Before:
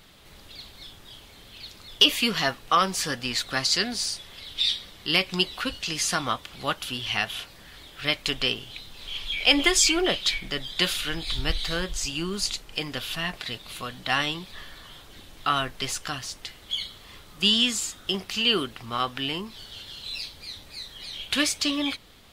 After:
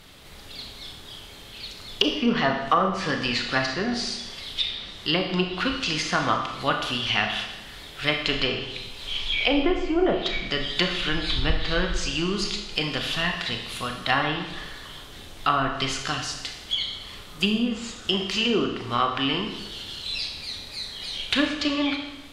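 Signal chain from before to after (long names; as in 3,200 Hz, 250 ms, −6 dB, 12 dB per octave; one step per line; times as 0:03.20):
treble cut that deepens with the level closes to 780 Hz, closed at −18 dBFS
four-comb reverb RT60 1 s, combs from 26 ms, DRR 3.5 dB
level +3.5 dB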